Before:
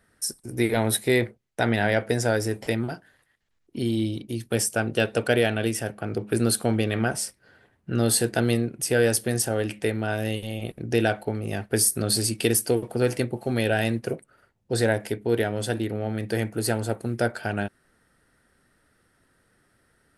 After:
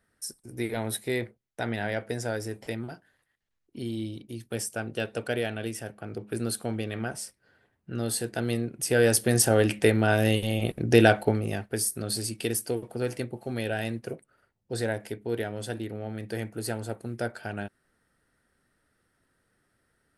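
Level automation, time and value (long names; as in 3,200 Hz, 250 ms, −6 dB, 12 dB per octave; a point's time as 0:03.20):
0:08.29 −8 dB
0:09.53 +4.5 dB
0:11.29 +4.5 dB
0:11.76 −7 dB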